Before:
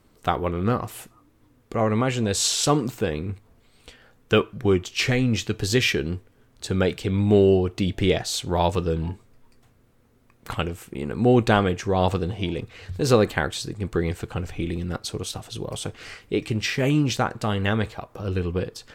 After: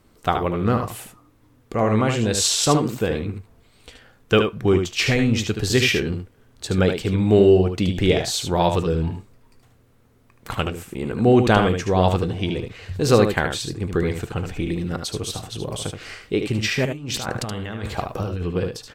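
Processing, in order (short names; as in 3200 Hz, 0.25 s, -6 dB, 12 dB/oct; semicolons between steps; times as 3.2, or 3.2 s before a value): 16.85–18.43 negative-ratio compressor -31 dBFS, ratio -1; echo 75 ms -6.5 dB; gain +2 dB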